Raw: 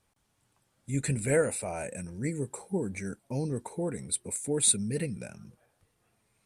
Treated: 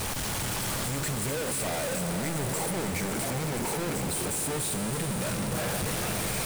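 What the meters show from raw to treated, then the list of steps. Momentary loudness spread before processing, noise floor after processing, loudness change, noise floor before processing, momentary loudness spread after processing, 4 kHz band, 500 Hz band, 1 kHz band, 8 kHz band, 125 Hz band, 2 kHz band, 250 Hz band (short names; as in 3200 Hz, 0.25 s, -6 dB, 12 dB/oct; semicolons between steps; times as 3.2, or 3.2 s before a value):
12 LU, -32 dBFS, +1.5 dB, -74 dBFS, 1 LU, +7.0 dB, 0.0 dB, +10.5 dB, +1.5 dB, +2.5 dB, +7.0 dB, +2.0 dB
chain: infinite clipping; on a send: swelling echo 86 ms, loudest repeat 5, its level -14 dB; on the sum: gain +1.5 dB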